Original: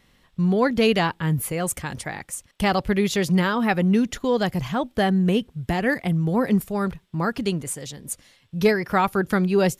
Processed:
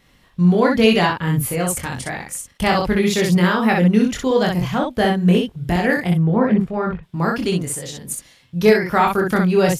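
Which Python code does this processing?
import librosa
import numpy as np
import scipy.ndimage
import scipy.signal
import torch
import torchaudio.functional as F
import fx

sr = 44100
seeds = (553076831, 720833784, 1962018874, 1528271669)

p1 = fx.lowpass(x, sr, hz=2200.0, slope=12, at=(6.17, 7.03))
p2 = p1 + fx.room_early_taps(p1, sr, ms=(23, 62), db=(-3.5, -3.5), dry=0)
y = p2 * librosa.db_to_amplitude(2.0)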